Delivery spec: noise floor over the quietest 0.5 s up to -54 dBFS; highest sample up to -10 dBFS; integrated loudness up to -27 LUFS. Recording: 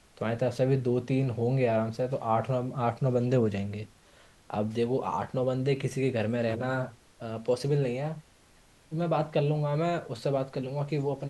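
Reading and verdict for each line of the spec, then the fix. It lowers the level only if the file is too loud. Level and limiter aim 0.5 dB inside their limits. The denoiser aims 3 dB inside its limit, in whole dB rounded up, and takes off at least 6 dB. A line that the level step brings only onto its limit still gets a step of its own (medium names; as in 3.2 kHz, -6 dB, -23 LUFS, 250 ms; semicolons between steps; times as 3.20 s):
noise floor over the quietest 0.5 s -59 dBFS: pass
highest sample -14.5 dBFS: pass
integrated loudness -29.5 LUFS: pass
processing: none needed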